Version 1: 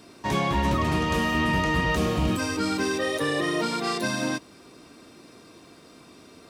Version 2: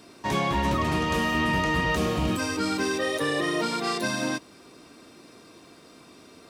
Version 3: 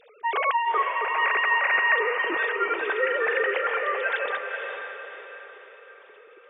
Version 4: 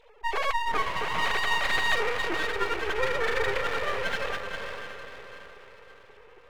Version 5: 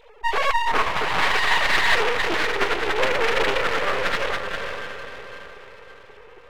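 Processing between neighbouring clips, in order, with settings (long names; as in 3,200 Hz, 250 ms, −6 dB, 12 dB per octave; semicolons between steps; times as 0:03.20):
low-shelf EQ 180 Hz −3.5 dB
three sine waves on the formant tracks; feedback delay with all-pass diffusion 454 ms, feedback 47%, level −5 dB
parametric band 320 Hz +4 dB 1.6 octaves; half-wave rectification
highs frequency-modulated by the lows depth 0.66 ms; level +6.5 dB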